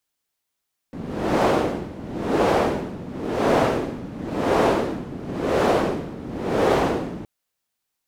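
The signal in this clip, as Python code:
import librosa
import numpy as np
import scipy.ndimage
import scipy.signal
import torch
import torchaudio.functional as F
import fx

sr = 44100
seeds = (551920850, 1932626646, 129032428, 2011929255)

y = fx.wind(sr, seeds[0], length_s=6.32, low_hz=220.0, high_hz=530.0, q=1.2, gusts=6, swing_db=16.0)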